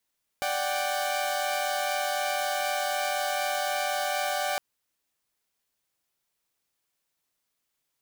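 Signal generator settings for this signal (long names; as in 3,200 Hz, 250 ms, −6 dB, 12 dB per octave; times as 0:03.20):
held notes D5/F#5/G5 saw, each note −28.5 dBFS 4.16 s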